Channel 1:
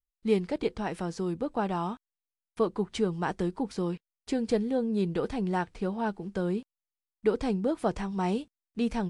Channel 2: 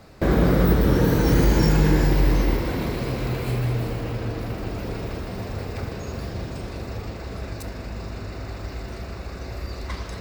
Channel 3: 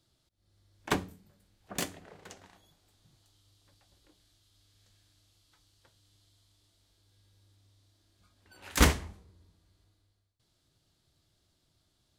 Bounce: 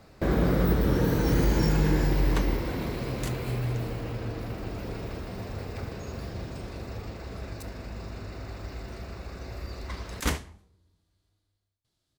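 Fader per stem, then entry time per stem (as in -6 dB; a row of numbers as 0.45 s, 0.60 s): mute, -5.5 dB, -5.5 dB; mute, 0.00 s, 1.45 s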